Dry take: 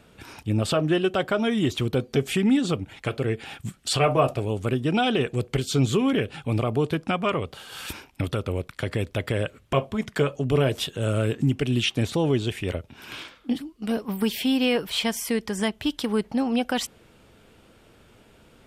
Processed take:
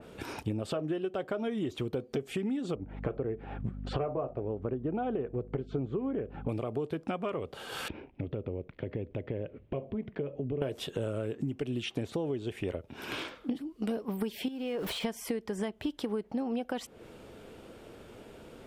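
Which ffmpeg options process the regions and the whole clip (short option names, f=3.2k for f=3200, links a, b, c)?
-filter_complex "[0:a]asettb=1/sr,asplit=3[a][b][c];[a]atrim=end=2.754[d];[b]atrim=start=2.75:end=6.49,asetpts=PTS-STARTPTS,afade=t=in:d=0.004:c=qsin,afade=t=out:st=3.736:d=0.004:c=qsin,lowpass=1.3k,aeval=exprs='val(0)+0.0126*(sin(2*PI*50*n/s)+sin(2*PI*2*50*n/s)/2+sin(2*PI*3*50*n/s)/3+sin(2*PI*4*50*n/s)/4+sin(2*PI*5*50*n/s)/5)':c=same[e];[c]atrim=start=6.486[f];[d][e]acrossfade=d=0.004:c1=hsin:c2=qsin[g];[g][f]acrossfade=d=0.004:c1=qsin:c2=hsin,asettb=1/sr,asplit=3[h][i][j];[h]atrim=end=7.884[k];[i]atrim=start=7.88:end=10.62,asetpts=PTS-STARTPTS,afade=t=in:d=0.004:c=qsin,afade=t=out:st=2.736:d=0.004:c=qsin,lowpass=f=2.5k:w=0.5412,lowpass=f=2.5k:w=1.3066,acompressor=threshold=-39dB:ratio=2:attack=3.2:release=140:knee=1:detection=peak,equalizer=f=1.3k:t=o:w=1.7:g=-14[l];[j]atrim=start=10.616[m];[k][l]acrossfade=d=0.004:c1=hsin:c2=qsin[n];[n][m]acrossfade=d=0.004:c1=qsin:c2=hsin,asettb=1/sr,asplit=3[o][p][q];[o]atrim=end=14.484[r];[p]atrim=start=14.48:end=15.04,asetpts=PTS-STARTPTS,afade=t=in:d=0.004:c=qsin,afade=t=out:st=0.556:d=0.004:c=qsin,aeval=exprs='val(0)+0.5*0.0211*sgn(val(0))':c=same,acompressor=threshold=-30dB:ratio=16:attack=3.2:release=140:knee=1:detection=peak[s];[q]atrim=start=15.036[t];[r][s]acrossfade=d=0.004:c1=hsin:c2=qsin[u];[u][t]acrossfade=d=0.004:c1=qsin:c2=hsin,equalizer=f=440:t=o:w=1.9:g=8,acompressor=threshold=-30dB:ratio=12,adynamicequalizer=threshold=0.002:dfrequency=2800:dqfactor=0.7:tfrequency=2800:tqfactor=0.7:attack=5:release=100:ratio=0.375:range=2:mode=cutabove:tftype=highshelf"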